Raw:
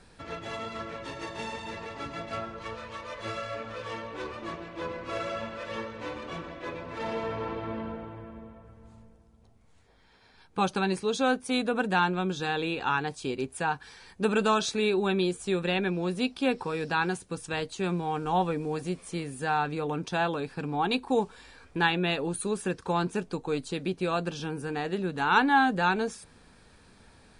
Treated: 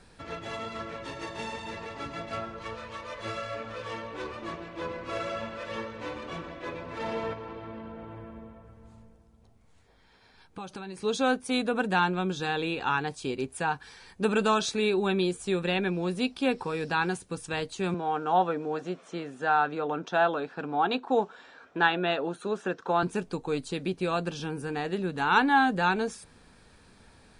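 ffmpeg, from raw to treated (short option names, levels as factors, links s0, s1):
-filter_complex "[0:a]asettb=1/sr,asplit=3[s0][s1][s2];[s0]atrim=end=7.334[s3];[s1]atrim=start=7.33:end=11,asetpts=PTS-STARTPTS,afade=t=in:d=0.004:c=qsin,afade=t=out:st=3.666:d=0.004:c=qsin,acompressor=threshold=0.0141:ratio=5:attack=3.2:release=140:knee=1:detection=peak[s4];[s2]atrim=start=10.996[s5];[s3][s4]acrossfade=d=0.004:c1=hsin:c2=qsin[s6];[s6][s5]acrossfade=d=0.004:c1=qsin:c2=hsin,asettb=1/sr,asplit=3[s7][s8][s9];[s7]atrim=end=17.944[s10];[s8]atrim=start=17.94:end=23.03,asetpts=PTS-STARTPTS,afade=t=in:d=0.004:c=qsin,afade=t=out:st=5.086:d=0.004:c=qsin,highpass=230,equalizer=f=660:t=q:w=4:g=7,equalizer=f=1400:t=q:w=4:g=7,equalizer=f=2300:t=q:w=4:g=-5,equalizer=f=4700:t=q:w=4:g=-9,lowpass=f=5900:w=0.5412,lowpass=f=5900:w=1.3066[s11];[s9]atrim=start=23.026[s12];[s10][s11]acrossfade=d=0.004:c1=hsin:c2=qsin[s13];[s13][s12]acrossfade=d=0.004:c1=qsin:c2=hsin"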